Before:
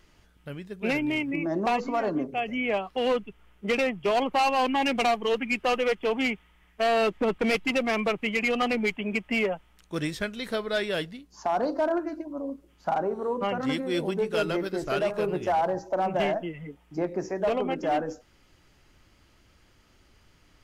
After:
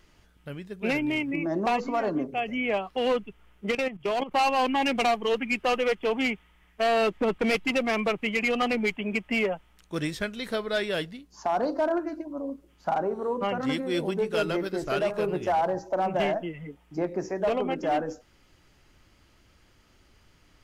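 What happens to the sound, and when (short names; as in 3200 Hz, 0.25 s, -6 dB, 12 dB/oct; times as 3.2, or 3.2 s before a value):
3.71–4.34 level quantiser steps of 13 dB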